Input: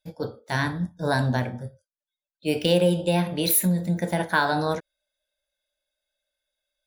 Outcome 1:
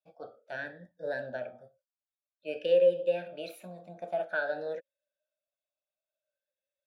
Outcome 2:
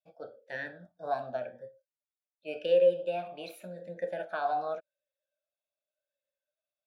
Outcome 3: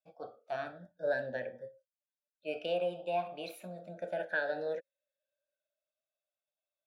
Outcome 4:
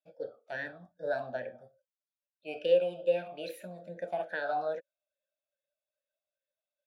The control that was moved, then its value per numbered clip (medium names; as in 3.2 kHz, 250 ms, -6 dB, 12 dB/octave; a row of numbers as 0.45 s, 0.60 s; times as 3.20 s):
talking filter, rate: 0.52 Hz, 0.88 Hz, 0.31 Hz, 2.4 Hz